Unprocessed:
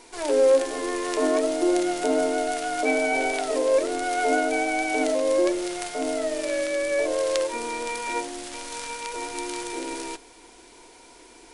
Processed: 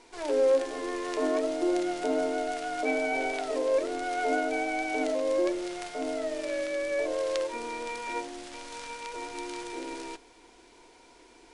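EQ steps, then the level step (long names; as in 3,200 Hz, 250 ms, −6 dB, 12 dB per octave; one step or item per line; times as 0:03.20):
high-frequency loss of the air 59 metres
−5.0 dB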